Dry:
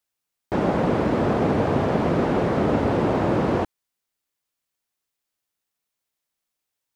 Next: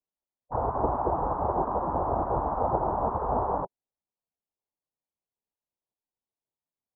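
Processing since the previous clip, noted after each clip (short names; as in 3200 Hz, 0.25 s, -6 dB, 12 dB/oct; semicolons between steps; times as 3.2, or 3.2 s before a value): spectral gate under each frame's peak -10 dB weak; steep low-pass 1000 Hz 36 dB/oct; gain +5.5 dB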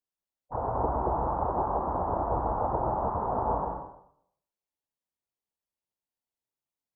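plate-style reverb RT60 0.69 s, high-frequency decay 0.75×, pre-delay 0.1 s, DRR 2 dB; gain -3.5 dB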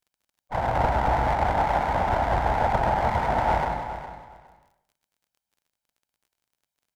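minimum comb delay 1.3 ms; feedback echo 0.411 s, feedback 18%, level -12 dB; crackle 37/s -59 dBFS; gain +6.5 dB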